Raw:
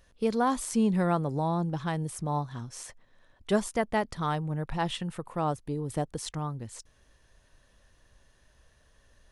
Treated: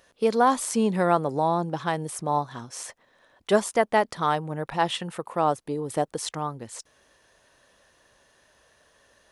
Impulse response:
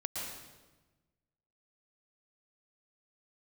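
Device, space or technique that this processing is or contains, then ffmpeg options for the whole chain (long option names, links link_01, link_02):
filter by subtraction: -filter_complex "[0:a]asplit=2[link_01][link_02];[link_02]lowpass=560,volume=-1[link_03];[link_01][link_03]amix=inputs=2:normalize=0,volume=5.5dB"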